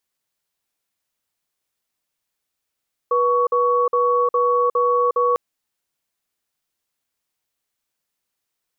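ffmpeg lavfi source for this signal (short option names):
-f lavfi -i "aevalsrc='0.133*(sin(2*PI*487*t)+sin(2*PI*1120*t))*clip(min(mod(t,0.41),0.36-mod(t,0.41))/0.005,0,1)':d=2.25:s=44100"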